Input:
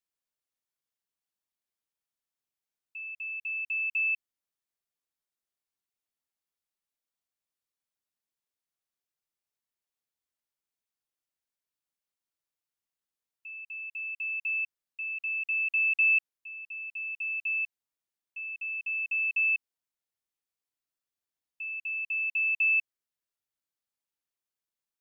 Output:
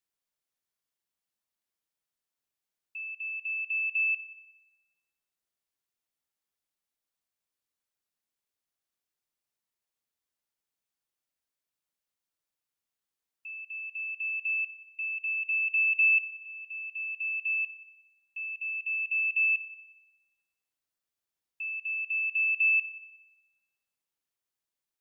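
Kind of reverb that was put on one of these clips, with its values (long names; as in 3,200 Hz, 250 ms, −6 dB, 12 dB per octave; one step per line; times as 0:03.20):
spring reverb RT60 1.1 s, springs 35/50 ms, chirp 55 ms, DRR 15.5 dB
level +1.5 dB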